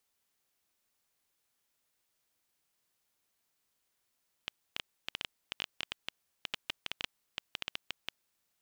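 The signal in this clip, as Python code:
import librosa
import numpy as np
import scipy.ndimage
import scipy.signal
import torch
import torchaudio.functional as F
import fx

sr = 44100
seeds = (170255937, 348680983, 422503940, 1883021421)

y = fx.geiger_clicks(sr, seeds[0], length_s=4.01, per_s=8.1, level_db=-17.0)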